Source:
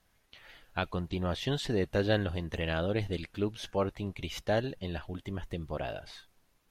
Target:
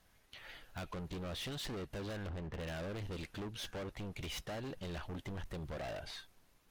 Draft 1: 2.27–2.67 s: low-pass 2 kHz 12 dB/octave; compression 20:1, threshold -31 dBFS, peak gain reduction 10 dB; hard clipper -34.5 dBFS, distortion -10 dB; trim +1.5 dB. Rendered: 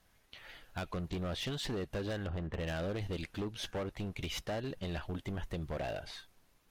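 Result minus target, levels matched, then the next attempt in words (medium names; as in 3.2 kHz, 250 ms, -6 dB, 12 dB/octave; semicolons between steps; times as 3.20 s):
hard clipper: distortion -5 dB
2.27–2.67 s: low-pass 2 kHz 12 dB/octave; compression 20:1, threshold -31 dBFS, peak gain reduction 10 dB; hard clipper -41.5 dBFS, distortion -5 dB; trim +1.5 dB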